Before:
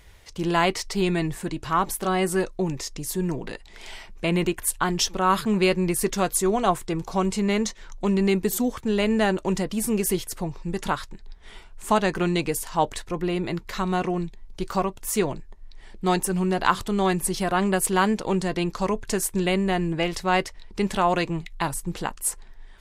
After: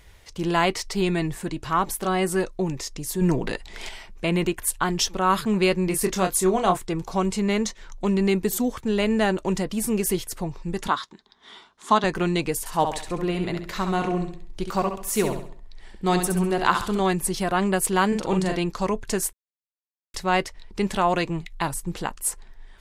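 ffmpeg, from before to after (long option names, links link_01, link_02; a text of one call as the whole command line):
ffmpeg -i in.wav -filter_complex "[0:a]asettb=1/sr,asplit=3[link_01][link_02][link_03];[link_01]atrim=end=3.214[link_04];[link_02]atrim=start=3.21:end=3.89,asetpts=PTS-STARTPTS,afade=type=in:duration=0.004:curve=qsin,afade=type=out:start_time=0.676:duration=0.004:curve=qsin,acontrast=60[link_05];[link_03]atrim=start=3.886[link_06];[link_04][link_05]acrossfade=duration=0.004:curve1=hsin:curve2=qsin[link_07];[link_07][link_06]acrossfade=duration=0.004:curve1=qsin:curve2=hsin,asettb=1/sr,asplit=3[link_08][link_09][link_10];[link_08]atrim=end=5.854[link_11];[link_09]atrim=start=5.85:end=6.77,asetpts=PTS-STARTPTS,afade=type=in:duration=0.004:curve=qsin,afade=type=out:start_time=0.916:duration=0.004:curve=qsin,asplit=2[link_12][link_13];[link_13]adelay=27,volume=-7dB[link_14];[link_12][link_14]amix=inputs=2:normalize=0,atrim=end_sample=40572[link_15];[link_10]atrim=start=6.766[link_16];[link_11][link_15]acrossfade=duration=0.004:curve1=hsin:curve2=qsin[link_17];[link_17][link_16]acrossfade=duration=0.004:curve1=qsin:curve2=hsin,asettb=1/sr,asplit=3[link_18][link_19][link_20];[link_18]atrim=end=10.884[link_21];[link_19]atrim=start=10.88:end=12.04,asetpts=PTS-STARTPTS,afade=type=in:duration=0.004:curve=qsin,afade=type=out:start_time=1.156:duration=0.004:curve=qsin,highpass=240,equalizer=frequency=240:width_type=q:width=4:gain=5,equalizer=frequency=530:width_type=q:width=4:gain=-7,equalizer=frequency=1100:width_type=q:width=4:gain=7,equalizer=frequency=2500:width_type=q:width=4:gain=-6,equalizer=frequency=3600:width_type=q:width=4:gain=8,equalizer=frequency=8400:width_type=q:width=4:gain=-8,lowpass=frequency=9300:width=0.5412,lowpass=frequency=9300:width=1.3066[link_22];[link_20]atrim=start=12.036[link_23];[link_21][link_22]acrossfade=duration=0.004:curve1=hsin:curve2=qsin[link_24];[link_24][link_23]acrossfade=duration=0.004:curve1=qsin:curve2=hsin,asettb=1/sr,asplit=3[link_25][link_26][link_27];[link_25]atrim=end=12.594[link_28];[link_26]atrim=start=12.59:end=17,asetpts=PTS-STARTPTS,afade=type=in:duration=0.004:curve=qsin,afade=type=out:start_time=4.406:duration=0.004:curve=qsin,aecho=1:1:67|134|201|268|335:0.447|0.174|0.0679|0.0265|0.0103,atrim=end_sample=194481[link_29];[link_27]atrim=start=16.996[link_30];[link_28][link_29]acrossfade=duration=0.004:curve1=hsin:curve2=qsin[link_31];[link_31][link_30]acrossfade=duration=0.004:curve1=qsin:curve2=hsin,asettb=1/sr,asplit=3[link_32][link_33][link_34];[link_32]atrim=end=18.084[link_35];[link_33]atrim=start=18.08:end=18.56,asetpts=PTS-STARTPTS,afade=type=in:duration=0.004:curve=qsin,afade=type=out:start_time=0.476:duration=0.004:curve=qsin,asplit=2[link_36][link_37];[link_37]adelay=43,volume=-4dB[link_38];[link_36][link_38]amix=inputs=2:normalize=0,atrim=end_sample=21168[link_39];[link_34]atrim=start=18.556[link_40];[link_35][link_39]acrossfade=duration=0.004:curve1=hsin:curve2=qsin[link_41];[link_41][link_40]acrossfade=duration=0.004:curve1=qsin:curve2=hsin,asplit=3[link_42][link_43][link_44];[link_42]atrim=end=19.33,asetpts=PTS-STARTPTS,afade=type=out:start_time=19.326:duration=0.004:curve=hsin[link_45];[link_43]atrim=start=19.33:end=20.14,asetpts=PTS-STARTPTS,volume=0[link_46];[link_44]atrim=start=20.14,asetpts=PTS-STARTPTS,afade=type=in:duration=0.004:curve=hsin[link_47];[link_45][link_46][link_47]concat=n=3:v=0:a=1" out.wav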